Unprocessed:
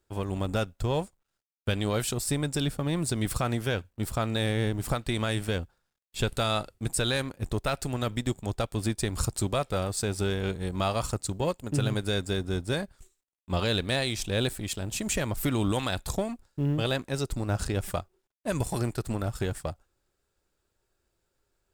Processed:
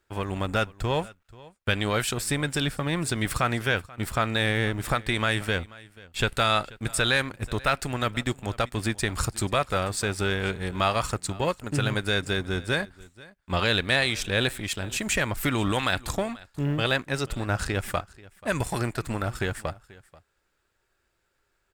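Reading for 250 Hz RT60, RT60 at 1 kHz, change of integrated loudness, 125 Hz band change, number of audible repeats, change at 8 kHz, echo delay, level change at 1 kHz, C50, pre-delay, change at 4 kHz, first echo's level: no reverb audible, no reverb audible, +3.0 dB, 0.0 dB, 1, +1.0 dB, 485 ms, +6.0 dB, no reverb audible, no reverb audible, +4.5 dB, −21.5 dB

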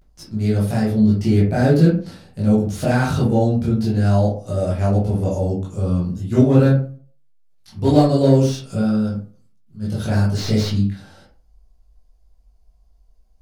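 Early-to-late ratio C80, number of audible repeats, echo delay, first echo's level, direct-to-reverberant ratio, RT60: 10.0 dB, no echo audible, no echo audible, no echo audible, −7.5 dB, 0.40 s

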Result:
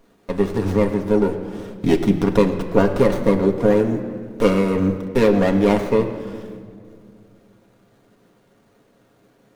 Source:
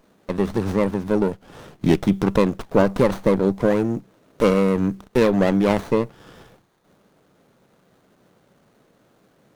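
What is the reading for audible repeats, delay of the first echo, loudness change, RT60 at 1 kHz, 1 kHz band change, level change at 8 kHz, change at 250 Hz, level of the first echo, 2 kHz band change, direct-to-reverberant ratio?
no echo audible, no echo audible, +1.5 dB, 1.9 s, +0.5 dB, can't be measured, +1.5 dB, no echo audible, +1.0 dB, 2.0 dB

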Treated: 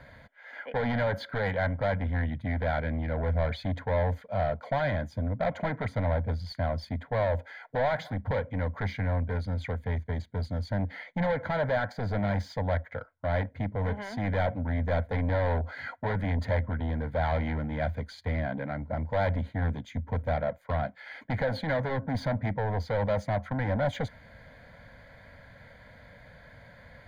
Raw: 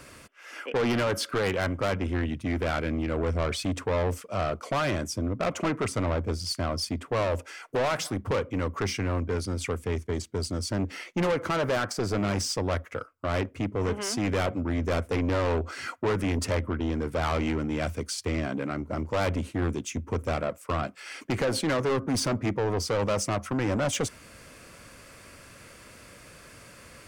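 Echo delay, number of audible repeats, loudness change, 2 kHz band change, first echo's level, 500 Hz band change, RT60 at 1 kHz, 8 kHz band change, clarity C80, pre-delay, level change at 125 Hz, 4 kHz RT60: no echo audible, no echo audible, −1.5 dB, −1.0 dB, no echo audible, −2.0 dB, no reverb audible, below −20 dB, no reverb audible, no reverb audible, +1.5 dB, no reverb audible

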